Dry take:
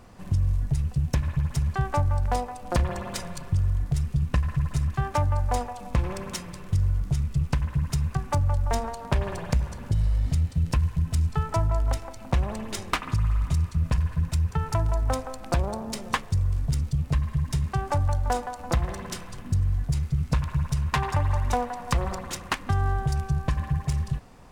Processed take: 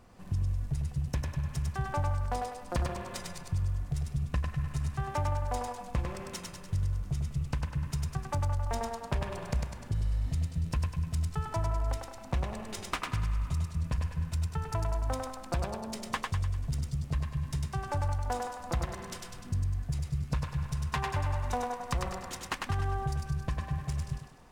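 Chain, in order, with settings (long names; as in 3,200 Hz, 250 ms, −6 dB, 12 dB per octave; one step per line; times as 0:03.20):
feedback echo with a high-pass in the loop 100 ms, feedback 48%, high-pass 330 Hz, level −3 dB
level −7.5 dB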